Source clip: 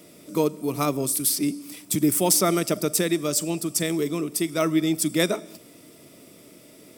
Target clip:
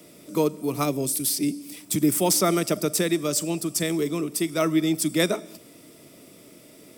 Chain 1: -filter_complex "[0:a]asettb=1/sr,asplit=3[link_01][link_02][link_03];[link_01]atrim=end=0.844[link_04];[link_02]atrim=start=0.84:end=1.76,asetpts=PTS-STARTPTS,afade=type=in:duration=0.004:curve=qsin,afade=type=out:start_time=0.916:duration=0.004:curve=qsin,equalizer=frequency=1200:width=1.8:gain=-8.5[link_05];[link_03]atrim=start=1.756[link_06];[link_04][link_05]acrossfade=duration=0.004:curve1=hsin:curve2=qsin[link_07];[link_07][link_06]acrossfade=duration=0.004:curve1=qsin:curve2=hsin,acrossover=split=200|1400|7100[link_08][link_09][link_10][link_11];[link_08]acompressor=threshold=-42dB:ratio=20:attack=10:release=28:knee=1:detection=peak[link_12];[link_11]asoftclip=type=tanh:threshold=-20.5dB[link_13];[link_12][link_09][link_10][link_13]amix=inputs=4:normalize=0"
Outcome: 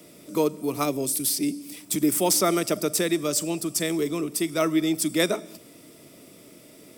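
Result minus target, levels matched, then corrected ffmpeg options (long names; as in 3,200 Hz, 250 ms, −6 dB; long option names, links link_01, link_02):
downward compressor: peak gain reduction +14 dB
-filter_complex "[0:a]asettb=1/sr,asplit=3[link_01][link_02][link_03];[link_01]atrim=end=0.844[link_04];[link_02]atrim=start=0.84:end=1.76,asetpts=PTS-STARTPTS,afade=type=in:duration=0.004:curve=qsin,afade=type=out:start_time=0.916:duration=0.004:curve=qsin,equalizer=frequency=1200:width=1.8:gain=-8.5[link_05];[link_03]atrim=start=1.756[link_06];[link_04][link_05]acrossfade=duration=0.004:curve1=hsin:curve2=qsin[link_07];[link_07][link_06]acrossfade=duration=0.004:curve1=qsin:curve2=hsin,acrossover=split=200|1400|7100[link_08][link_09][link_10][link_11];[link_11]asoftclip=type=tanh:threshold=-20.5dB[link_12];[link_08][link_09][link_10][link_12]amix=inputs=4:normalize=0"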